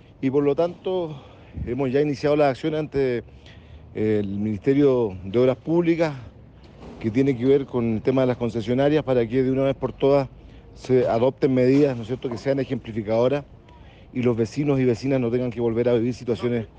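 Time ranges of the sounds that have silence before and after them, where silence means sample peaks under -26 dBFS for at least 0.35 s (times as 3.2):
1.58–3.19
3.96–6.14
7.04–10.25
10.85–13.4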